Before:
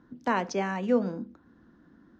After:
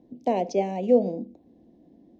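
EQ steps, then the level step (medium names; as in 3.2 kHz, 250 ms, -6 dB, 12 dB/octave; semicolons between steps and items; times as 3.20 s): FFT filter 120 Hz 0 dB, 710 Hz +11 dB, 1.4 kHz -30 dB, 2.2 kHz -1 dB; -2.0 dB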